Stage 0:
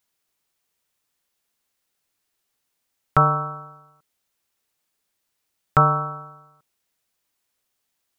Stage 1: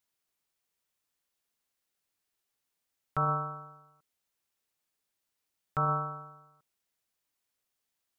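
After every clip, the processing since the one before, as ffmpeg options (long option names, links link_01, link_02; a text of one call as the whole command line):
ffmpeg -i in.wav -af "alimiter=limit=-12.5dB:level=0:latency=1:release=16,volume=-7.5dB" out.wav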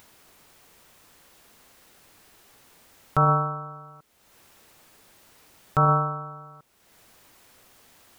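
ffmpeg -i in.wav -filter_complex "[0:a]highshelf=frequency=2100:gain=-9,asplit=2[link_01][link_02];[link_02]acompressor=mode=upward:threshold=-36dB:ratio=2.5,volume=-1.5dB[link_03];[link_01][link_03]amix=inputs=2:normalize=0,volume=5.5dB" out.wav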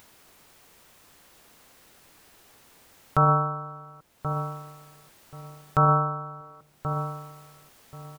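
ffmpeg -i in.wav -filter_complex "[0:a]asplit=2[link_01][link_02];[link_02]adelay=1081,lowpass=frequency=870:poles=1,volume=-7dB,asplit=2[link_03][link_04];[link_04]adelay=1081,lowpass=frequency=870:poles=1,volume=0.23,asplit=2[link_05][link_06];[link_06]adelay=1081,lowpass=frequency=870:poles=1,volume=0.23[link_07];[link_01][link_03][link_05][link_07]amix=inputs=4:normalize=0" out.wav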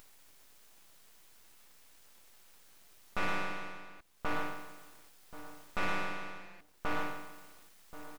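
ffmpeg -i in.wav -af "alimiter=limit=-19.5dB:level=0:latency=1:release=299,aeval=exprs='abs(val(0))':channel_layout=same,volume=-2.5dB" out.wav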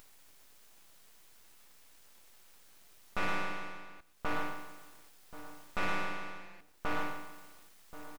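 ffmpeg -i in.wav -af "aecho=1:1:123:0.106" out.wav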